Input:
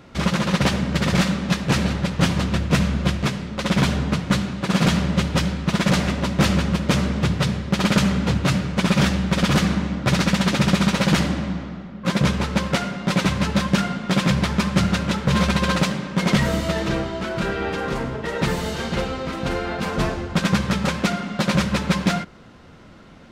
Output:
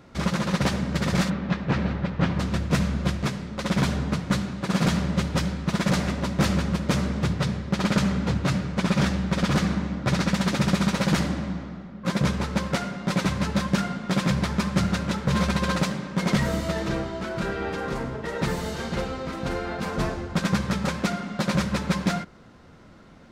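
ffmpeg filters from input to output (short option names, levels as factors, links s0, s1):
-filter_complex "[0:a]asplit=3[s0][s1][s2];[s0]afade=t=out:st=1.29:d=0.02[s3];[s1]lowpass=2800,afade=t=in:st=1.29:d=0.02,afade=t=out:st=2.38:d=0.02[s4];[s2]afade=t=in:st=2.38:d=0.02[s5];[s3][s4][s5]amix=inputs=3:normalize=0,asettb=1/sr,asplit=3[s6][s7][s8];[s6]atrim=end=7.334[s9];[s7]atrim=start=7.33:end=10.34,asetpts=PTS-STARTPTS,afade=t=in:d=0.004:c=qsin,afade=t=out:st=3.006:d=0.004:c=qsin,highshelf=f=9900:g=-7.5[s10];[s8]atrim=start=10.336[s11];[s9][s10]acrossfade=d=0.004:c1=hsin:c2=qsin[s12];[s12][s11]acrossfade=d=0.004:c1=qsin:c2=hsin,equalizer=f=2900:t=o:w=0.69:g=-4,volume=0.631"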